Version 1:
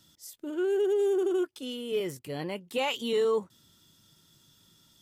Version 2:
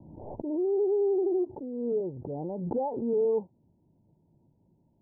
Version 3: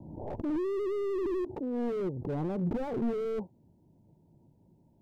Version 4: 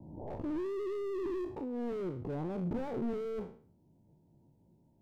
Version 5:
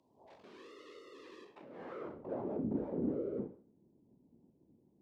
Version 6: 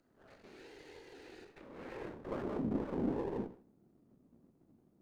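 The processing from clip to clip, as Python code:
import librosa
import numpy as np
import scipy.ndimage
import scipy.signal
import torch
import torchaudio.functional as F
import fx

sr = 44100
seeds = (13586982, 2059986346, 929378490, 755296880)

y1 = scipy.signal.sosfilt(scipy.signal.butter(16, 920.0, 'lowpass', fs=sr, output='sos'), x)
y1 = fx.pre_swell(y1, sr, db_per_s=42.0)
y2 = fx.slew_limit(y1, sr, full_power_hz=7.8)
y2 = y2 * librosa.db_to_amplitude(3.5)
y3 = fx.spec_trails(y2, sr, decay_s=0.46)
y3 = y3 * librosa.db_to_amplitude(-5.0)
y4 = fx.whisperise(y3, sr, seeds[0])
y4 = fx.filter_sweep_bandpass(y4, sr, from_hz=4100.0, to_hz=280.0, start_s=1.37, end_s=2.76, q=1.1)
y4 = y4 * librosa.db_to_amplitude(2.0)
y5 = fx.lower_of_two(y4, sr, delay_ms=0.45)
y5 = y5 * librosa.db_to_amplitude(1.0)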